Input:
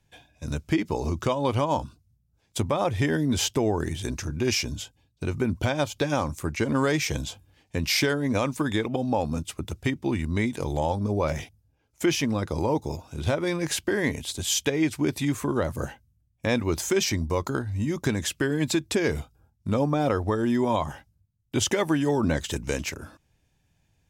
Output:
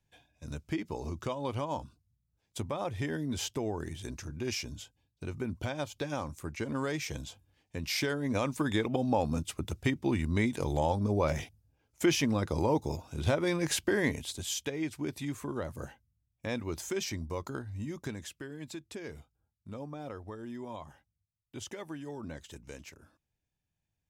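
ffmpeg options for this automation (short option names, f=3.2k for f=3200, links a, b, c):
-af "volume=-3dB,afade=t=in:st=7.81:d=1.11:silence=0.446684,afade=t=out:st=13.98:d=0.59:silence=0.421697,afade=t=out:st=17.8:d=0.64:silence=0.421697"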